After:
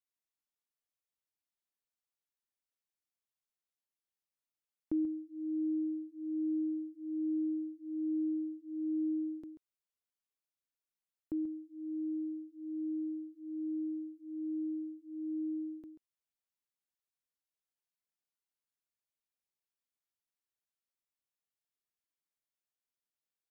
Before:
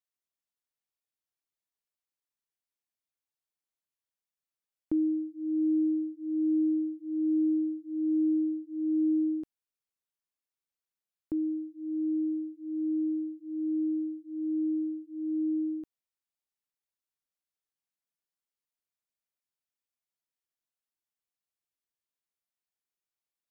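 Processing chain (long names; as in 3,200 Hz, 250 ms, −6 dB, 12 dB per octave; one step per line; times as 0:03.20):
single-tap delay 136 ms −11 dB
level −5 dB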